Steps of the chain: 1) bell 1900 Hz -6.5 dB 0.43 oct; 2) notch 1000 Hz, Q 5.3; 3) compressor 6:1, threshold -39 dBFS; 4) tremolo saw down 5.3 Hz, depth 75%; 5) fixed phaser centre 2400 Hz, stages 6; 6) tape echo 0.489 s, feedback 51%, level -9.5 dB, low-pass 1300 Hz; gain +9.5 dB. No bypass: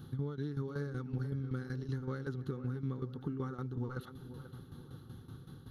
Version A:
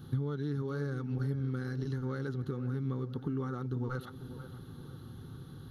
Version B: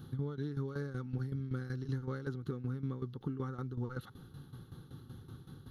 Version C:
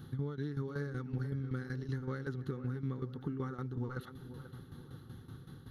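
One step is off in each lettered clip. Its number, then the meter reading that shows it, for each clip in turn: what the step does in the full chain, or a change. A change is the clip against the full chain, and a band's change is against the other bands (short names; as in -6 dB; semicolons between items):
4, loudness change +3.5 LU; 6, echo-to-direct -40.5 dB to none; 1, 2 kHz band +2.5 dB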